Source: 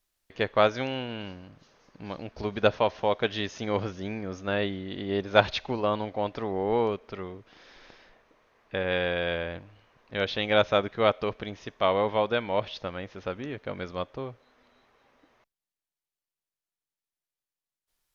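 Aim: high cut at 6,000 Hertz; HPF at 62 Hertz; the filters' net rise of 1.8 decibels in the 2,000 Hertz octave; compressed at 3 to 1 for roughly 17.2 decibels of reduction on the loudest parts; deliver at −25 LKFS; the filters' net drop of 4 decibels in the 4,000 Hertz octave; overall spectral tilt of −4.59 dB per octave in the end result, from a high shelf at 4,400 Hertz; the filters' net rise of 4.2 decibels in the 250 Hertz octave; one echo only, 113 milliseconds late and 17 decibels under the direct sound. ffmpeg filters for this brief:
ffmpeg -i in.wav -af "highpass=62,lowpass=6000,equalizer=frequency=250:width_type=o:gain=5.5,equalizer=frequency=2000:width_type=o:gain=3.5,equalizer=frequency=4000:width_type=o:gain=-8.5,highshelf=frequency=4400:gain=5,acompressor=threshold=-38dB:ratio=3,aecho=1:1:113:0.141,volume=15dB" out.wav

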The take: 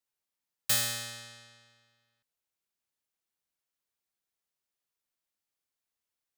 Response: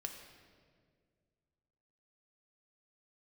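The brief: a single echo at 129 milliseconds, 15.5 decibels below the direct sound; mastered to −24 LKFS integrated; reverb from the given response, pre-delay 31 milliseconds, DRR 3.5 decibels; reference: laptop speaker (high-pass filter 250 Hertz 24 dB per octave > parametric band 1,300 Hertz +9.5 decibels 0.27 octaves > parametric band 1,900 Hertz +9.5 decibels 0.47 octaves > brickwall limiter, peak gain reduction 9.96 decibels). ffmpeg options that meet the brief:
-filter_complex "[0:a]aecho=1:1:129:0.168,asplit=2[link_01][link_02];[1:a]atrim=start_sample=2205,adelay=31[link_03];[link_02][link_03]afir=irnorm=-1:irlink=0,volume=-1.5dB[link_04];[link_01][link_04]amix=inputs=2:normalize=0,highpass=frequency=250:width=0.5412,highpass=frequency=250:width=1.3066,equalizer=frequency=1300:width_type=o:width=0.27:gain=9.5,equalizer=frequency=1900:width_type=o:width=0.47:gain=9.5,volume=10dB,alimiter=limit=-12.5dB:level=0:latency=1"

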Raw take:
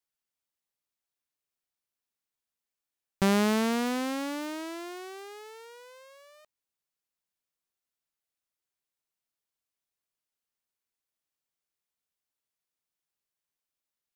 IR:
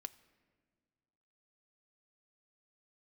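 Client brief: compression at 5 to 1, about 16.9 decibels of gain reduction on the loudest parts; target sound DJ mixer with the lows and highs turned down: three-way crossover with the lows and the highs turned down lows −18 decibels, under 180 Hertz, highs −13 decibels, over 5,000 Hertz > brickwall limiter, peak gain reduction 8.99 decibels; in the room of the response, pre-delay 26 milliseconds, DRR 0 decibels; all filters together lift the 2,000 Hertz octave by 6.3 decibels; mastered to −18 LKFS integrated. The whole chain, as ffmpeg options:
-filter_complex "[0:a]equalizer=frequency=2000:width_type=o:gain=8,acompressor=threshold=-39dB:ratio=5,asplit=2[link_01][link_02];[1:a]atrim=start_sample=2205,adelay=26[link_03];[link_02][link_03]afir=irnorm=-1:irlink=0,volume=4.5dB[link_04];[link_01][link_04]amix=inputs=2:normalize=0,acrossover=split=180 5000:gain=0.126 1 0.224[link_05][link_06][link_07];[link_05][link_06][link_07]amix=inputs=3:normalize=0,volume=23.5dB,alimiter=limit=-6dB:level=0:latency=1"

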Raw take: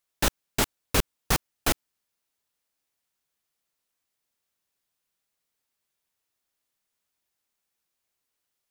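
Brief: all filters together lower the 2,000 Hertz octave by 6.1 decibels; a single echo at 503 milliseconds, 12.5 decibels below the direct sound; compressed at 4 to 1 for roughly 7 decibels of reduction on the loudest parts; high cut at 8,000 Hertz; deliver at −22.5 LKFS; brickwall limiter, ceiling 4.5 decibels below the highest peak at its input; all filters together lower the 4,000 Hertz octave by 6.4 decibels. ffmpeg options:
ffmpeg -i in.wav -af "lowpass=8000,equalizer=frequency=2000:width_type=o:gain=-6.5,equalizer=frequency=4000:width_type=o:gain=-6,acompressor=threshold=-28dB:ratio=4,alimiter=limit=-20dB:level=0:latency=1,aecho=1:1:503:0.237,volume=16.5dB" out.wav

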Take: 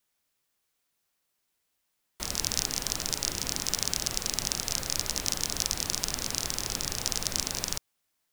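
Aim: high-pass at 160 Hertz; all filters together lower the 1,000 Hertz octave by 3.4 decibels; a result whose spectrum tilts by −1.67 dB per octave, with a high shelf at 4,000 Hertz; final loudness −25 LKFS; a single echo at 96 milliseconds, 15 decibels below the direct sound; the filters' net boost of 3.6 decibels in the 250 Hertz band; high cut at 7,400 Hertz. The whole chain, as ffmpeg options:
ffmpeg -i in.wav -af "highpass=160,lowpass=7400,equalizer=frequency=250:width_type=o:gain=6,equalizer=frequency=1000:width_type=o:gain=-5.5,highshelf=frequency=4000:gain=8.5,aecho=1:1:96:0.178,volume=0.5dB" out.wav

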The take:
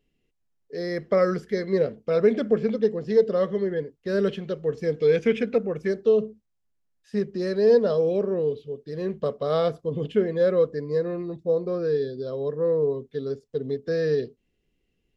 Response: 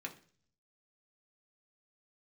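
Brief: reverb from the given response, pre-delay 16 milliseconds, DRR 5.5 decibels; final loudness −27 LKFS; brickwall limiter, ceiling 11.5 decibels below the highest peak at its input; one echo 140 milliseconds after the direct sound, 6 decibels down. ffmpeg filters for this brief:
-filter_complex "[0:a]alimiter=limit=-20.5dB:level=0:latency=1,aecho=1:1:140:0.501,asplit=2[link_01][link_02];[1:a]atrim=start_sample=2205,adelay=16[link_03];[link_02][link_03]afir=irnorm=-1:irlink=0,volume=-4.5dB[link_04];[link_01][link_04]amix=inputs=2:normalize=0,volume=0.5dB"

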